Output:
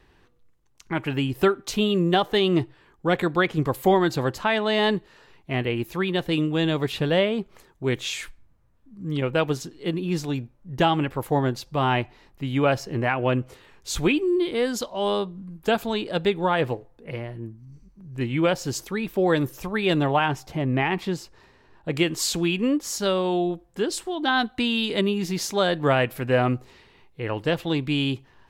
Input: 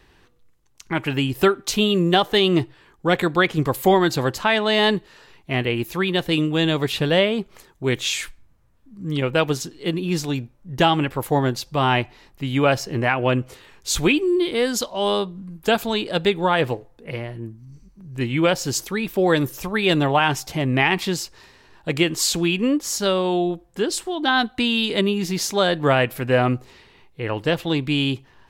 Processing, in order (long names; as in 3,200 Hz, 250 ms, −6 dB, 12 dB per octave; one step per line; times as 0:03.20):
high-shelf EQ 2,400 Hz −5.5 dB, from 0:20.26 −12 dB, from 0:21.93 −2.5 dB
level −2.5 dB